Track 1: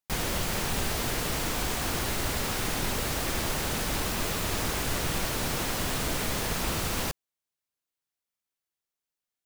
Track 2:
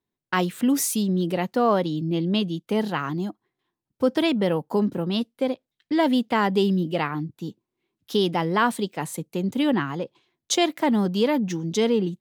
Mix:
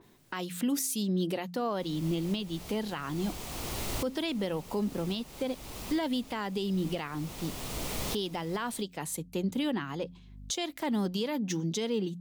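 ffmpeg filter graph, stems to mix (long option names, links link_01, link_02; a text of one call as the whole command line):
ffmpeg -i stem1.wav -i stem2.wav -filter_complex "[0:a]aeval=exprs='val(0)+0.00708*(sin(2*PI*50*n/s)+sin(2*PI*2*50*n/s)/2+sin(2*PI*3*50*n/s)/3+sin(2*PI*4*50*n/s)/4+sin(2*PI*5*50*n/s)/5)':channel_layout=same,equalizer=frequency=1600:width_type=o:width=0.51:gain=-8.5,adelay=1700,volume=-3.5dB[link_01];[1:a]adynamicequalizer=threshold=0.0112:dfrequency=2600:dqfactor=0.7:tfrequency=2600:tqfactor=0.7:attack=5:release=100:ratio=0.375:range=3.5:mode=boostabove:tftype=highshelf,volume=-3dB,asplit=2[link_02][link_03];[link_03]apad=whole_len=492052[link_04];[link_01][link_04]sidechaincompress=threshold=-33dB:ratio=10:attack=28:release=997[link_05];[link_05][link_02]amix=inputs=2:normalize=0,bandreject=frequency=88.35:width_type=h:width=4,bandreject=frequency=176.7:width_type=h:width=4,bandreject=frequency=265.05:width_type=h:width=4,acompressor=mode=upward:threshold=-38dB:ratio=2.5,alimiter=limit=-22dB:level=0:latency=1:release=310" out.wav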